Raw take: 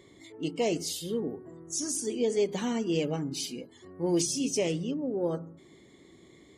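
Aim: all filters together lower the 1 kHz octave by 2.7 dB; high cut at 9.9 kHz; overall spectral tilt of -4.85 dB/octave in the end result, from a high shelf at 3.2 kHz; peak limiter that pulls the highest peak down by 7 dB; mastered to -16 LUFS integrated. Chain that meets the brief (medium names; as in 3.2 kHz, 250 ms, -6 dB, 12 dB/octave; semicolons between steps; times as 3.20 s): low-pass 9.9 kHz; peaking EQ 1 kHz -3.5 dB; treble shelf 3.2 kHz -5.5 dB; trim +18 dB; peak limiter -6.5 dBFS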